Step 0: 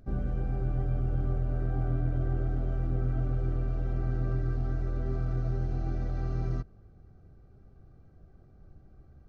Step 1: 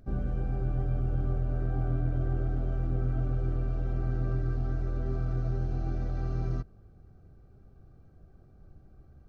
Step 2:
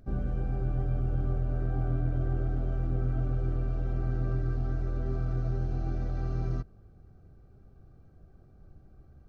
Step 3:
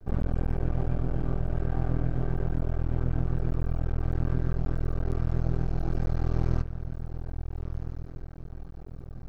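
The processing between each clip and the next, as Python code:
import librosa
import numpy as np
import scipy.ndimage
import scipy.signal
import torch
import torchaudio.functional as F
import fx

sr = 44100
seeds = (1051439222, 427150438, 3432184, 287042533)

y1 = fx.notch(x, sr, hz=2000.0, q=19.0)
y2 = y1
y3 = fx.echo_diffused(y2, sr, ms=1388, feedback_pct=41, wet_db=-14.0)
y3 = np.maximum(y3, 0.0)
y3 = fx.rider(y3, sr, range_db=5, speed_s=2.0)
y3 = F.gain(torch.from_numpy(y3), 5.0).numpy()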